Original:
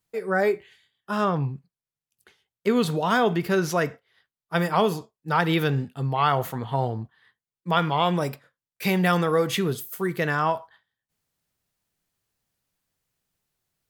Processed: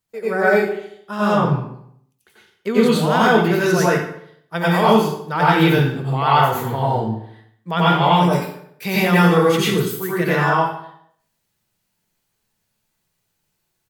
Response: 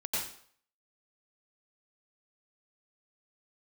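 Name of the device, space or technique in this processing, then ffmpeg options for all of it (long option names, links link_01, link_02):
bathroom: -filter_complex "[0:a]asplit=2[link_01][link_02];[link_02]adelay=73,lowpass=frequency=2400:poles=1,volume=-12dB,asplit=2[link_03][link_04];[link_04]adelay=73,lowpass=frequency=2400:poles=1,volume=0.54,asplit=2[link_05][link_06];[link_06]adelay=73,lowpass=frequency=2400:poles=1,volume=0.54,asplit=2[link_07][link_08];[link_08]adelay=73,lowpass=frequency=2400:poles=1,volume=0.54,asplit=2[link_09][link_10];[link_10]adelay=73,lowpass=frequency=2400:poles=1,volume=0.54,asplit=2[link_11][link_12];[link_12]adelay=73,lowpass=frequency=2400:poles=1,volume=0.54[link_13];[link_01][link_03][link_05][link_07][link_09][link_11][link_13]amix=inputs=7:normalize=0[link_14];[1:a]atrim=start_sample=2205[link_15];[link_14][link_15]afir=irnorm=-1:irlink=0,volume=2dB"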